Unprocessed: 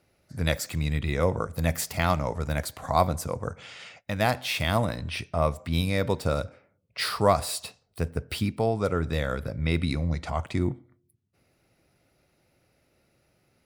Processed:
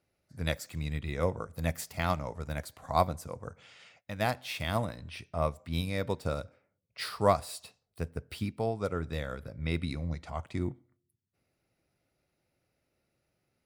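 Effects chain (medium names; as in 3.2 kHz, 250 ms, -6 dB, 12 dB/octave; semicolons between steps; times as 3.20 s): upward expansion 1.5:1, over -33 dBFS; trim -3 dB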